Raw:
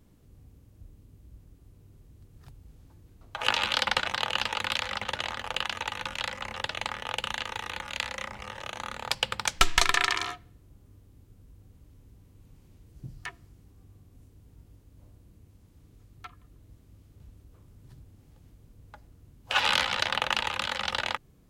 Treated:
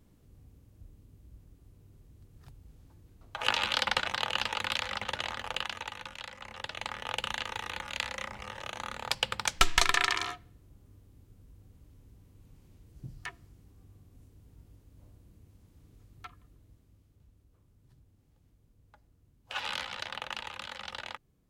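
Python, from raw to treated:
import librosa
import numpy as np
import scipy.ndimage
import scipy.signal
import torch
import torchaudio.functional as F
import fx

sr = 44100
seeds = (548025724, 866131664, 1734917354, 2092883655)

y = fx.gain(x, sr, db=fx.line((5.48, -2.5), (6.27, -11.0), (7.1, -2.0), (16.26, -2.0), (17.26, -11.0)))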